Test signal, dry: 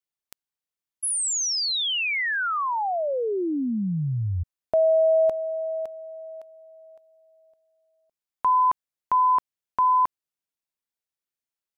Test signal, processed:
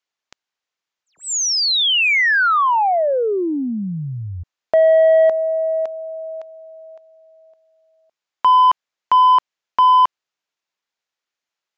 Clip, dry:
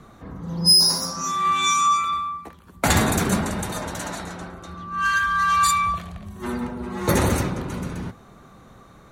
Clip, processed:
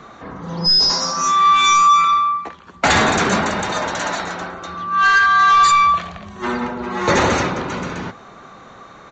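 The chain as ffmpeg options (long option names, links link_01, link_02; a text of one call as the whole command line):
ffmpeg -i in.wav -filter_complex "[0:a]asplit=2[link_01][link_02];[link_02]highpass=frequency=720:poles=1,volume=18dB,asoftclip=type=tanh:threshold=-3.5dB[link_03];[link_01][link_03]amix=inputs=2:normalize=0,lowpass=frequency=3700:poles=1,volume=-6dB,aresample=16000,aresample=44100" out.wav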